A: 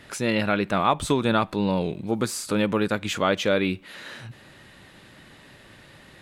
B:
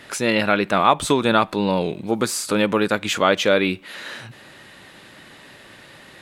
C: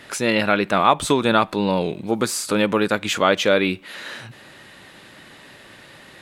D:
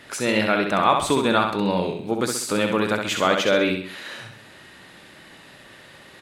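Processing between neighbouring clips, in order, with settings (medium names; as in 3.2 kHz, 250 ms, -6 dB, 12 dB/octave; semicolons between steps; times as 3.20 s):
bass shelf 160 Hz -11 dB; trim +6 dB
no audible change
feedback delay 65 ms, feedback 43%, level -5 dB; trim -3 dB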